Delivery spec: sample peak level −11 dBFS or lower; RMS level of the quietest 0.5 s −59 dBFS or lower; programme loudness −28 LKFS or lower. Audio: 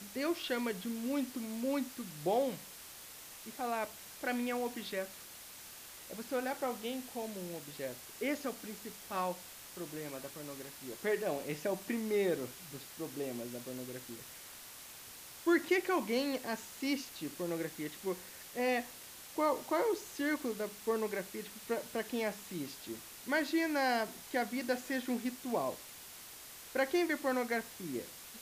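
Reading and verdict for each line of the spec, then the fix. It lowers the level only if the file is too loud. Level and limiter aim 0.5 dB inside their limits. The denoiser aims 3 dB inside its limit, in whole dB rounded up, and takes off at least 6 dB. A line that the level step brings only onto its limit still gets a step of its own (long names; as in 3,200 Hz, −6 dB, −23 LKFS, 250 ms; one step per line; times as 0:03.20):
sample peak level −18.5 dBFS: in spec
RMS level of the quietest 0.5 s −51 dBFS: out of spec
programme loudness −37.0 LKFS: in spec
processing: broadband denoise 11 dB, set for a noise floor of −51 dBFS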